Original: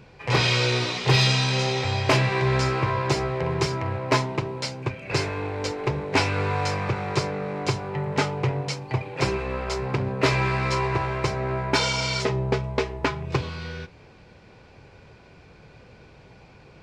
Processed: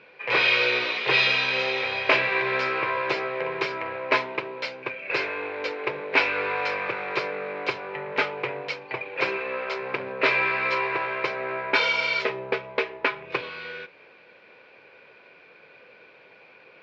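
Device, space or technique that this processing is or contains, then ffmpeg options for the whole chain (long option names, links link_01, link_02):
phone earpiece: -af "highpass=450,equalizer=frequency=510:width_type=q:width=4:gain=4,equalizer=frequency=790:width_type=q:width=4:gain=-5,equalizer=frequency=1600:width_type=q:width=4:gain=4,equalizer=frequency=2400:width_type=q:width=4:gain=7,lowpass=frequency=4000:width=0.5412,lowpass=frequency=4000:width=1.3066"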